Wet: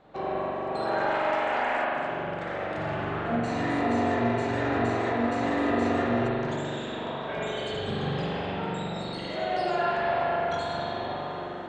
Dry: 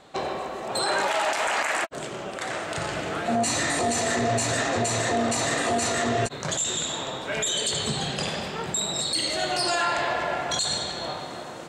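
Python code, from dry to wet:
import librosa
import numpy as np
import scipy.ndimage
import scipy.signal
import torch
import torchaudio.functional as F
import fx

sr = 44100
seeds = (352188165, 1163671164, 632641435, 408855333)

p1 = 10.0 ** (-24.0 / 20.0) * np.tanh(x / 10.0 ** (-24.0 / 20.0))
p2 = x + (p1 * 10.0 ** (-6.0 / 20.0))
p3 = fx.spacing_loss(p2, sr, db_at_10k=30)
p4 = fx.rev_spring(p3, sr, rt60_s=2.7, pass_ms=(42,), chirp_ms=65, drr_db=-6.0)
y = p4 * 10.0 ** (-7.5 / 20.0)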